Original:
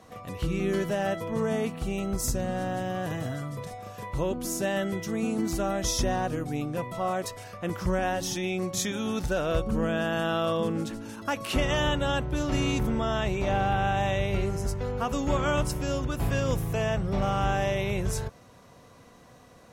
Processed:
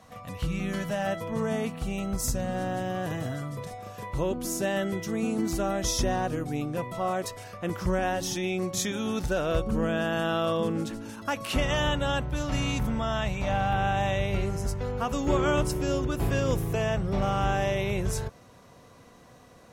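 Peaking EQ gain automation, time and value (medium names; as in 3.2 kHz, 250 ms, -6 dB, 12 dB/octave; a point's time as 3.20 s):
peaking EQ 370 Hz 0.42 oct
-14 dB
from 1.07 s -6 dB
from 2.54 s +1 dB
from 11.10 s -5.5 dB
from 12.30 s -13.5 dB
from 13.73 s -2.5 dB
from 15.25 s +8 dB
from 16.75 s +1 dB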